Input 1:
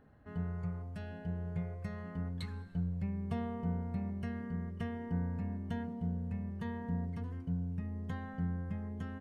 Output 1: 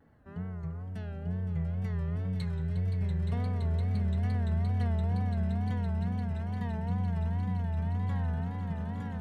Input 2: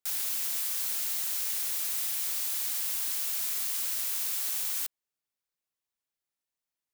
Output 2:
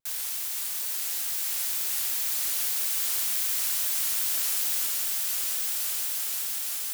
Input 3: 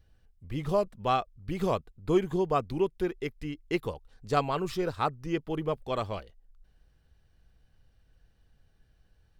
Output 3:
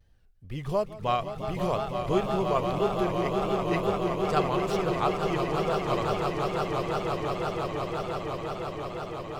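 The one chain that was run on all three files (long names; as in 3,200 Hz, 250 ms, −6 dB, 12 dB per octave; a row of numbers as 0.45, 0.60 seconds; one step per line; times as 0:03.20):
echo that builds up and dies away 172 ms, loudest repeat 8, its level −8 dB
tape wow and flutter 110 cents
dynamic equaliser 290 Hz, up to −6 dB, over −44 dBFS, Q 2.3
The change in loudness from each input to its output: +7.0, +3.0, +2.5 LU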